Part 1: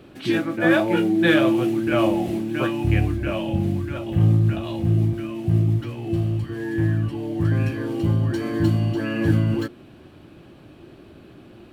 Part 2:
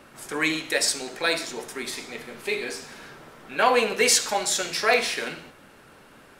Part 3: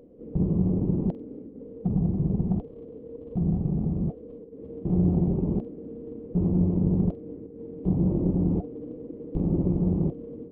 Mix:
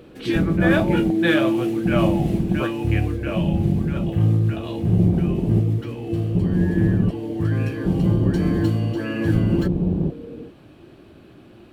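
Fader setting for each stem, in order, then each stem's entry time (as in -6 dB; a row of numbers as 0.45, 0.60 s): -1.0 dB, off, +3.0 dB; 0.00 s, off, 0.00 s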